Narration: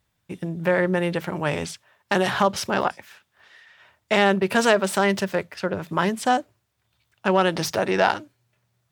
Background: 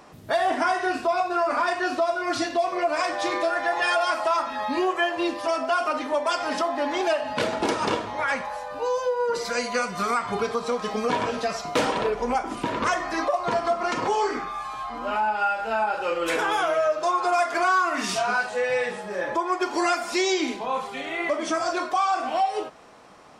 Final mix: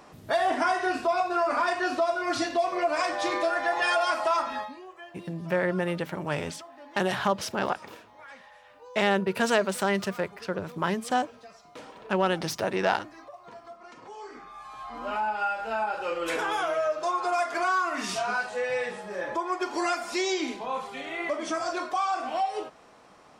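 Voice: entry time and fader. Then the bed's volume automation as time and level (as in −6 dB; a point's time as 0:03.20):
4.85 s, −5.5 dB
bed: 0:04.58 −2 dB
0:04.78 −22 dB
0:14.02 −22 dB
0:15.00 −4.5 dB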